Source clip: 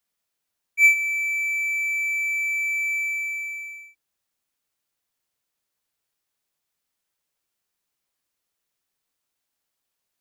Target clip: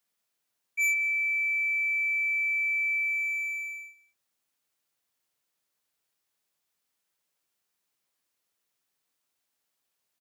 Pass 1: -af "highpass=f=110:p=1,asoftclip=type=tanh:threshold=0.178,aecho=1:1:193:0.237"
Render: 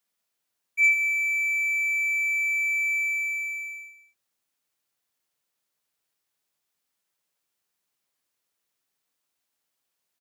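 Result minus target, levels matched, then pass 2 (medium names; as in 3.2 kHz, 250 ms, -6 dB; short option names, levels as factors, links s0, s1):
echo-to-direct +7 dB; saturation: distortion -6 dB
-af "highpass=f=110:p=1,asoftclip=type=tanh:threshold=0.0668,aecho=1:1:193:0.106"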